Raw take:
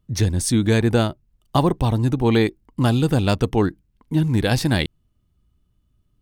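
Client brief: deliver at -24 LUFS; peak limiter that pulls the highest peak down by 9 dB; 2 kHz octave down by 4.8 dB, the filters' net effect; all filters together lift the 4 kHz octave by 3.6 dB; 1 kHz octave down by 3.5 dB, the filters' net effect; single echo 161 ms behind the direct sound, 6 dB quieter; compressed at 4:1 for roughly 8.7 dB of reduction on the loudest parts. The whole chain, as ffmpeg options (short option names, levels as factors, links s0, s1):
-af "equalizer=f=1000:t=o:g=-3.5,equalizer=f=2000:t=o:g=-7,equalizer=f=4000:t=o:g=6.5,acompressor=threshold=0.0631:ratio=4,alimiter=limit=0.0944:level=0:latency=1,aecho=1:1:161:0.501,volume=2.11"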